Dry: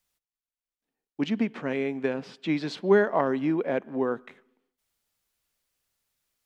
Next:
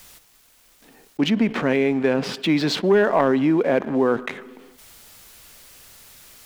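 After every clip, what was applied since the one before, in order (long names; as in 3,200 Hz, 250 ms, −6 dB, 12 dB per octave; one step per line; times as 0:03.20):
leveller curve on the samples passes 1
envelope flattener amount 50%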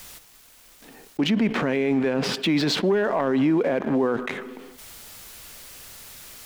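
brickwall limiter −18.5 dBFS, peak gain reduction 11 dB
level +4 dB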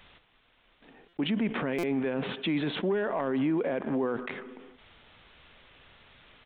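downsampling to 8,000 Hz
buffer that repeats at 0:01.08/0:01.78, samples 256, times 8
level −7 dB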